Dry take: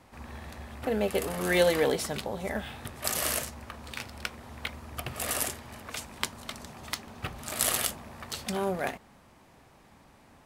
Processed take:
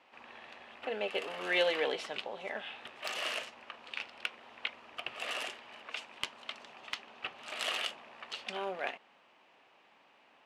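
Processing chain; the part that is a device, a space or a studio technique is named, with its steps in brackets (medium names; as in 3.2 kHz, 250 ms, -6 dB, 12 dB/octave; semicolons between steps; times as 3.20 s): megaphone (band-pass 450–3900 Hz; peaking EQ 2.8 kHz +10 dB 0.54 oct; hard clipper -13.5 dBFS, distortion -22 dB); trim -5 dB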